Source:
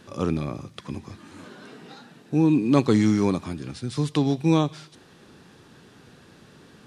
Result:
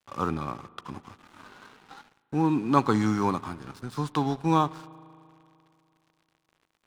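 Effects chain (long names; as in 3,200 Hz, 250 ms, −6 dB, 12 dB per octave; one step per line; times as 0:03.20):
flat-topped bell 1,100 Hz +12 dB 1.2 octaves
dead-zone distortion −40.5 dBFS
on a send: convolution reverb RT60 2.7 s, pre-delay 37 ms, DRR 20.5 dB
on the sum: level −5 dB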